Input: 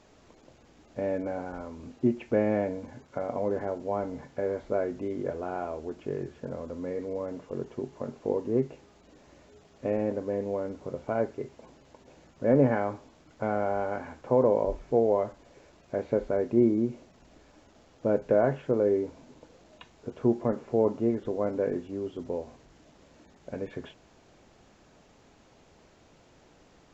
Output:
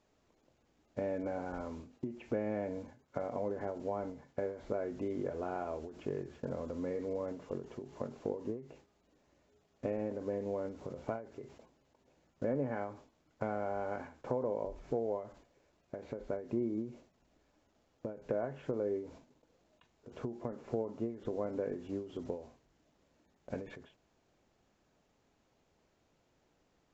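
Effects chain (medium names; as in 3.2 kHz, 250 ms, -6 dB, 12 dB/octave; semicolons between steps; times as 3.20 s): gate -49 dBFS, range -14 dB; compression 4:1, threshold -32 dBFS, peak gain reduction 13 dB; endings held to a fixed fall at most 120 dB/s; trim -1 dB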